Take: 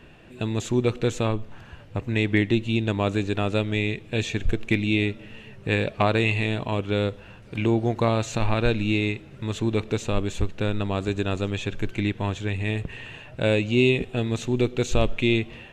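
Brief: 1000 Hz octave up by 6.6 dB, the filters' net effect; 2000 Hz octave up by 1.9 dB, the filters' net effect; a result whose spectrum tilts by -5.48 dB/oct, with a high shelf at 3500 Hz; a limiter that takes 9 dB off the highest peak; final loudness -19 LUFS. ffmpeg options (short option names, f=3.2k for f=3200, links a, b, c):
-af "equalizer=f=1k:t=o:g=8.5,equalizer=f=2k:t=o:g=3,highshelf=f=3.5k:g=-6.5,volume=7dB,alimiter=limit=-6dB:level=0:latency=1"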